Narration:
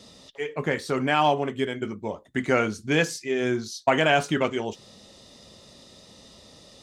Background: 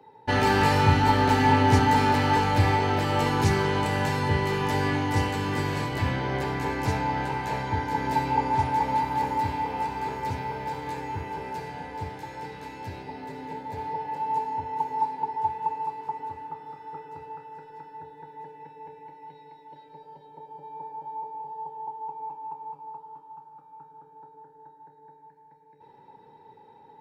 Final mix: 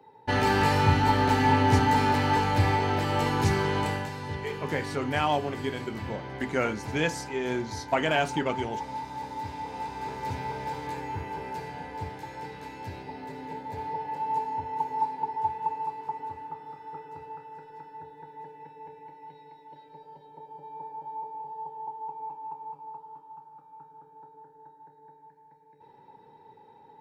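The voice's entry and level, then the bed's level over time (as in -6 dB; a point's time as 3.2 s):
4.05 s, -5.0 dB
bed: 3.89 s -2 dB
4.1 s -10.5 dB
9.23 s -10.5 dB
10.45 s -1.5 dB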